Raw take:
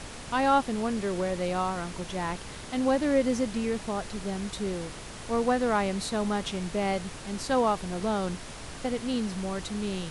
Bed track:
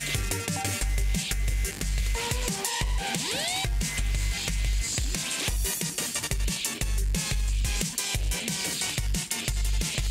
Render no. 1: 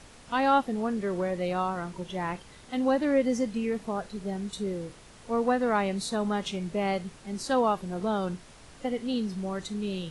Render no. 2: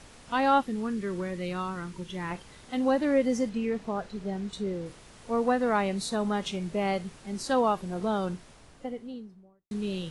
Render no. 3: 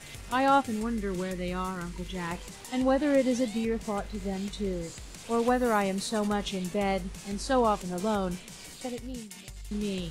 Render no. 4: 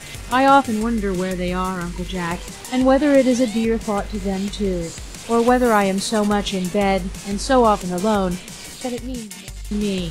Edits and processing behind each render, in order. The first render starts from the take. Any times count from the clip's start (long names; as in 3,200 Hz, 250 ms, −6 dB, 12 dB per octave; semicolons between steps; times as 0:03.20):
noise reduction from a noise print 10 dB
0:00.63–0:02.31: parametric band 680 Hz −13 dB; 0:03.49–0:04.86: high-frequency loss of the air 53 metres; 0:08.17–0:09.71: fade out and dull
mix in bed track −16 dB
level +10 dB